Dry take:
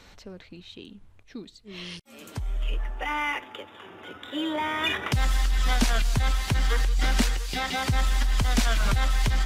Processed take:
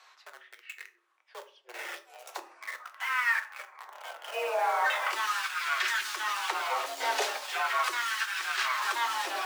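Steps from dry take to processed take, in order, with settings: repeated pitch sweeps -11 st, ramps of 0.98 s; HPF 150 Hz 12 dB/oct; in parallel at -6.5 dB: companded quantiser 2-bit; on the sum: frequency shift +240 Hz; LFO high-pass sine 0.39 Hz 650–1500 Hz; on a send at -6 dB: reverb RT60 0.45 s, pre-delay 3 ms; on the sum: gain -7 dB

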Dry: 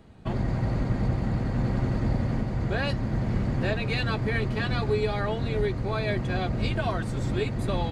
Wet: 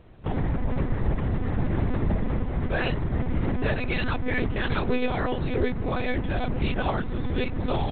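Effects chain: monotone LPC vocoder at 8 kHz 250 Hz; gain +1.5 dB

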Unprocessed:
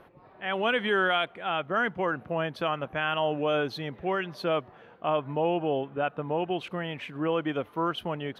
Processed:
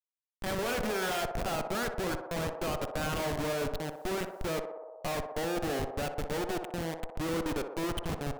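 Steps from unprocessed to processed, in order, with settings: 1.02–1.42 sample leveller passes 2; Schmitt trigger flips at -30 dBFS; on a send: narrowing echo 61 ms, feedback 84%, band-pass 680 Hz, level -6 dB; 3.82–4.46 on the sum: requantised 10-bit, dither none; gain -3.5 dB

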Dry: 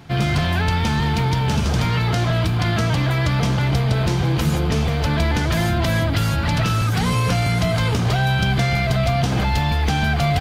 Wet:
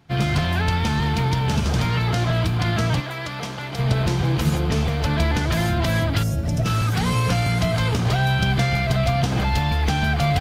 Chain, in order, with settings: 3–3.79 HPF 410 Hz 6 dB/oct; 6.23–6.66 spectral gain 760–5000 Hz -14 dB; upward expander 1.5:1, over -41 dBFS

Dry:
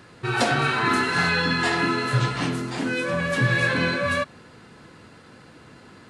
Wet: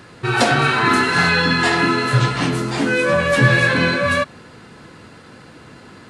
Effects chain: 2.51–3.59 doubler 14 ms -3.5 dB; gain +6 dB

